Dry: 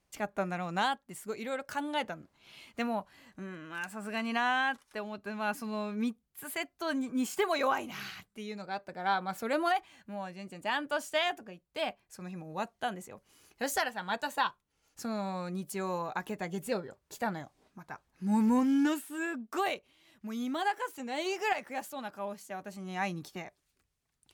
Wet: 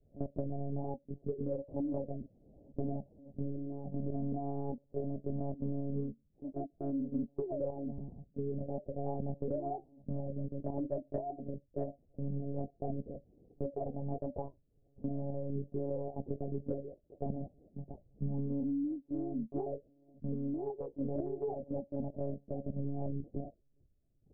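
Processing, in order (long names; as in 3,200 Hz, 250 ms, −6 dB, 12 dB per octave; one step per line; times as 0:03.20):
adaptive Wiener filter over 25 samples
Butterworth low-pass 640 Hz 48 dB per octave
low-shelf EQ 80 Hz +8 dB
harmonic and percussive parts rebalanced harmonic +4 dB
0:15.07–0:17.41: spectral tilt +2 dB per octave
downward compressor 12 to 1, threshold −37 dBFS, peak gain reduction 17.5 dB
one-pitch LPC vocoder at 8 kHz 140 Hz
level +4.5 dB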